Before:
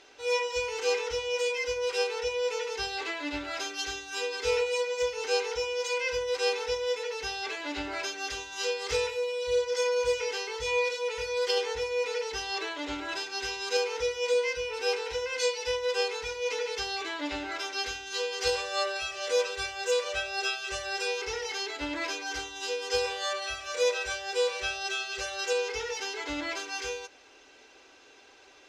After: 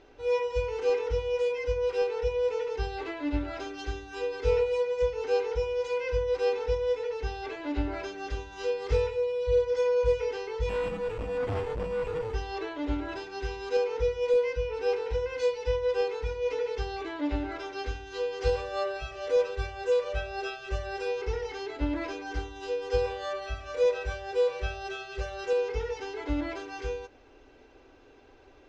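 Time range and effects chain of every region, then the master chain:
10.69–12.34 sample-rate reducer 5200 Hz + core saturation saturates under 1900 Hz
whole clip: LPF 8000 Hz 12 dB/oct; tilt -4.5 dB/oct; gain -2 dB

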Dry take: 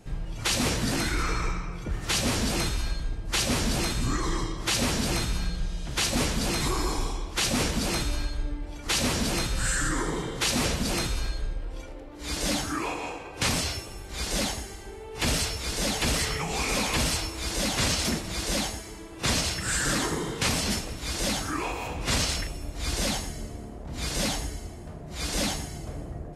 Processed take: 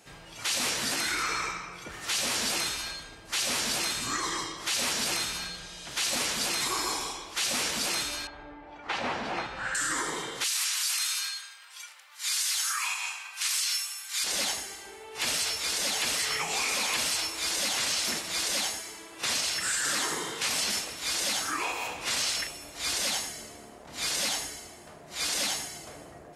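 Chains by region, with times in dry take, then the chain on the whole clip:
8.27–9.75 LPF 1800 Hz + bell 800 Hz +7 dB 0.43 oct
10.44–14.24 HPF 1100 Hz 24 dB/oct + high shelf 4800 Hz +9 dB
whole clip: HPF 1300 Hz 6 dB/oct; limiter -24 dBFS; gain +4.5 dB

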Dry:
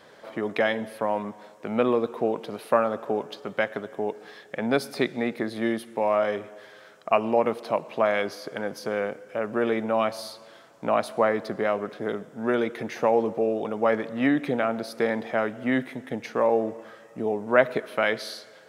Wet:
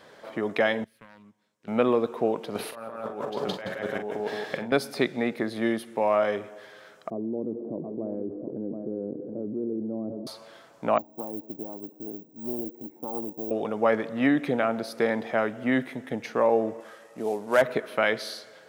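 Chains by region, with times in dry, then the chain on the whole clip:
0.84–1.68 self-modulated delay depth 0.19 ms + passive tone stack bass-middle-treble 6-0-2 + transient shaper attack +3 dB, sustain -3 dB
2.55–4.72 feedback echo 0.167 s, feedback 29%, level -3 dB + negative-ratio compressor -34 dBFS + doubler 43 ms -8 dB
7.1–10.27 ladder low-pass 380 Hz, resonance 50% + echo 0.723 s -13 dB + fast leveller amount 70%
10.98–13.51 vocal tract filter u + careless resampling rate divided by 2×, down filtered, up zero stuff + Doppler distortion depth 0.19 ms
16.8–17.62 CVSD 64 kbps + HPF 300 Hz 6 dB/oct
whole clip: dry

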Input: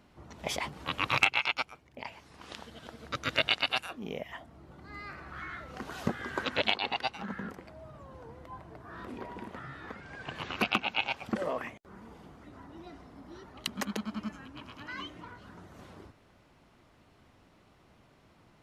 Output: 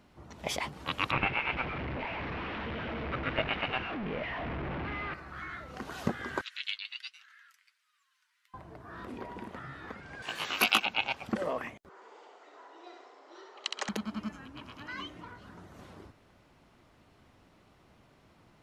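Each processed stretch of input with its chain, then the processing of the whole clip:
1.11–5.14 delta modulation 32 kbps, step -29.5 dBFS + Chebyshev low-pass 2500 Hz, order 3
6.41–8.54 Bessel high-pass 2600 Hz, order 8 + flange 1.2 Hz, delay 3.6 ms, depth 6.1 ms, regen +49%
10.22–10.86 RIAA curve recording + doubler 18 ms -2.5 dB
11.89–13.89 Chebyshev band-pass 390–7600 Hz, order 4 + feedback echo 65 ms, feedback 45%, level -3.5 dB
whole clip: dry

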